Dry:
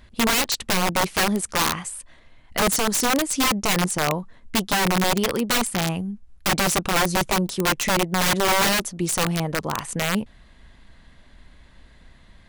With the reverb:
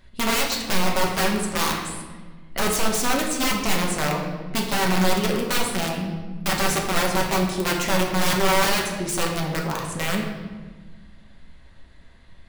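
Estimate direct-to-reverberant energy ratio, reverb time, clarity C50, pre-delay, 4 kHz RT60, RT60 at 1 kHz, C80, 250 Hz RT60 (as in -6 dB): -1.0 dB, 1.4 s, 4.0 dB, 5 ms, 1.0 s, 1.2 s, 6.0 dB, 2.0 s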